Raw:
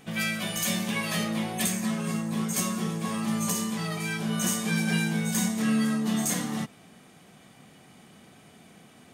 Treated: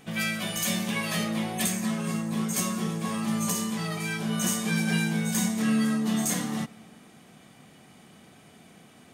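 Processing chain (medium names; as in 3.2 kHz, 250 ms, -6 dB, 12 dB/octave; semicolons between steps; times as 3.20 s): on a send: reverberation RT60 2.8 s, pre-delay 3 ms, DRR 21.5 dB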